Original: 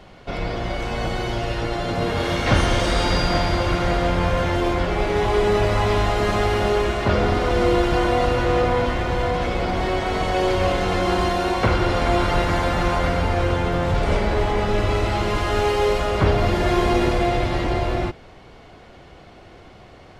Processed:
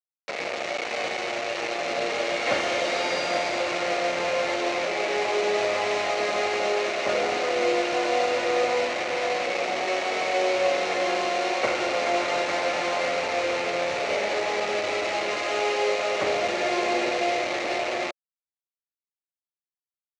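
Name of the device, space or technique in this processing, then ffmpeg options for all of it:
hand-held game console: -af "acrusher=bits=3:mix=0:aa=0.000001,highpass=490,equalizer=f=570:t=q:w=4:g=5,equalizer=f=990:t=q:w=4:g=-7,equalizer=f=1500:t=q:w=4:g=-6,equalizer=f=2300:t=q:w=4:g=4,equalizer=f=3300:t=q:w=4:g=-6,equalizer=f=5000:t=q:w=4:g=-5,lowpass=f=5600:w=0.5412,lowpass=f=5600:w=1.3066,volume=0.794"

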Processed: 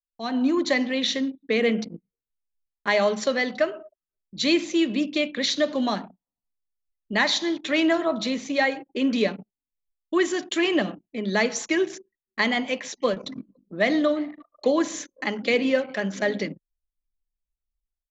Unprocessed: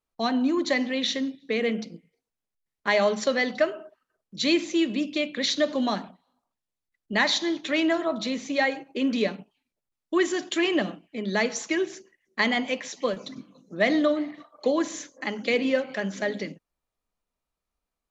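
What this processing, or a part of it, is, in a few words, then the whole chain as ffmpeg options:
voice memo with heavy noise removal: -af "anlmdn=0.1,dynaudnorm=f=230:g=3:m=6.68,volume=0.355"

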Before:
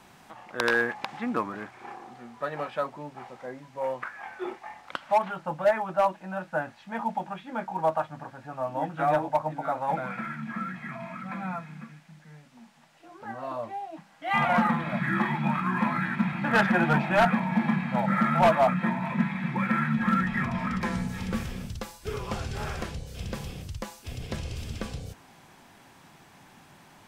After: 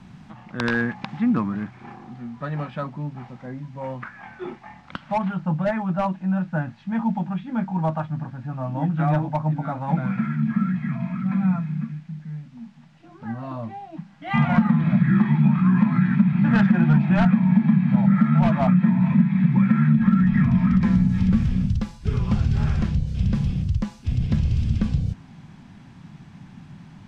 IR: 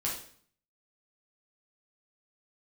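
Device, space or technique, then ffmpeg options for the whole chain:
jukebox: -af "lowpass=5600,lowshelf=f=290:t=q:w=1.5:g=14,acompressor=threshold=0.2:ratio=4"

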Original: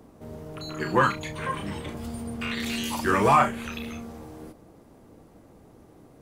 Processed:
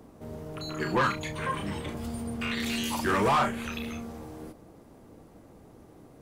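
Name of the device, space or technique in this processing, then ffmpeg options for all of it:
saturation between pre-emphasis and de-emphasis: -af "highshelf=f=10000:g=11,asoftclip=type=tanh:threshold=0.106,highshelf=f=10000:g=-11"

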